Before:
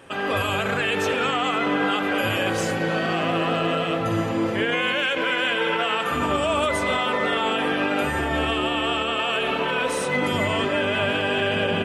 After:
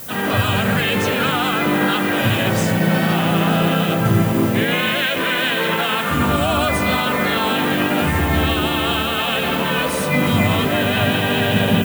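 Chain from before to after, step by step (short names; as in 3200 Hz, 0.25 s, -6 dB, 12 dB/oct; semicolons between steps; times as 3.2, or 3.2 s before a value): added noise violet -37 dBFS; harmoniser +3 st -4 dB; resonant low shelf 270 Hz +7 dB, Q 1.5; gain +2.5 dB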